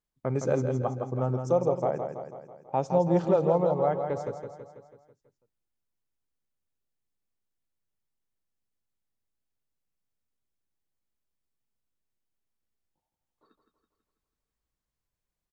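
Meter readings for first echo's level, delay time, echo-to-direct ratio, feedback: −7.0 dB, 164 ms, −5.5 dB, 56%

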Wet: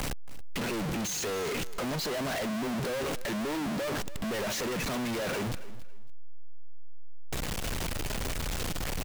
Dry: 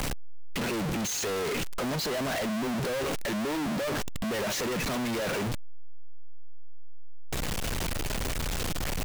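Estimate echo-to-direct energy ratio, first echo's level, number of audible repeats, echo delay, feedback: −17.0 dB, −17.0 dB, 2, 277 ms, 23%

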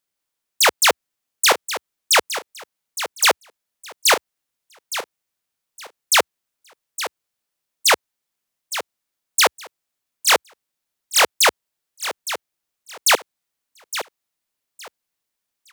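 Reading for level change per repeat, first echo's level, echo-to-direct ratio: −13.0 dB, −11.5 dB, −11.5 dB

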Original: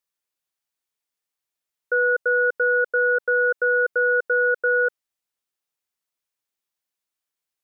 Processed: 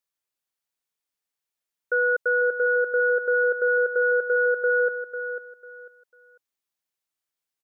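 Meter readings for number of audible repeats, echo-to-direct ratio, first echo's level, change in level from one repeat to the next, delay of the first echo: 3, −9.0 dB, −9.5 dB, −12.0 dB, 497 ms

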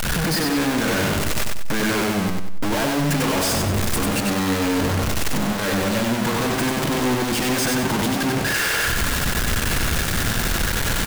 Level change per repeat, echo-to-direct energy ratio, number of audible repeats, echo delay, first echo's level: −8.5 dB, −3.0 dB, 4, 95 ms, −3.5 dB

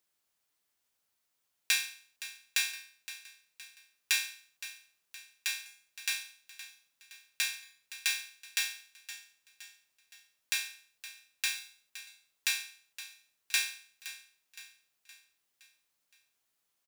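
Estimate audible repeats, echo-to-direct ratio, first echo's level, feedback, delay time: 4, −13.5 dB, −14.5 dB, 50%, 517 ms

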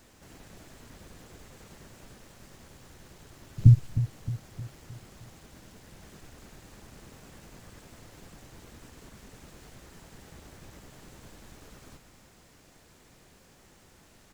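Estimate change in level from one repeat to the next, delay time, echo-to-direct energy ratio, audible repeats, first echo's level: −6.0 dB, 310 ms, −11.5 dB, 4, −12.5 dB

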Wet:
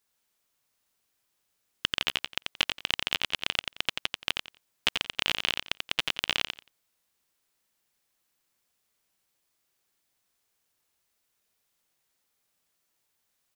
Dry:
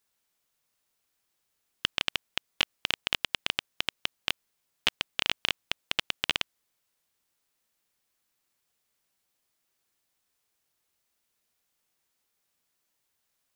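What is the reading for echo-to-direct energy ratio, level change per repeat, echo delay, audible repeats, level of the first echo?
−4.5 dB, −15.0 dB, 88 ms, 3, −4.5 dB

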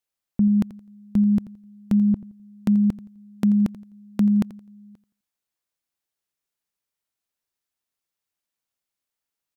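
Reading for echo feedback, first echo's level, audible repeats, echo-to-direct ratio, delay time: 27%, −17.0 dB, 2, −16.5 dB, 85 ms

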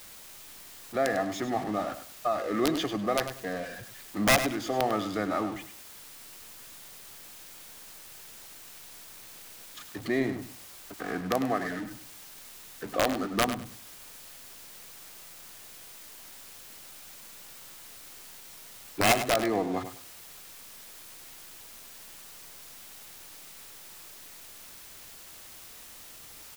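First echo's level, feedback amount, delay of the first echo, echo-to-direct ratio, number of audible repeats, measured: −10.5 dB, 22%, 100 ms, −10.5 dB, 2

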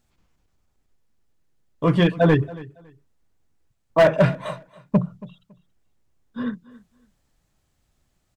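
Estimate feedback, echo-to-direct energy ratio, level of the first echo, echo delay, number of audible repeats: 21%, −20.0 dB, −20.0 dB, 278 ms, 2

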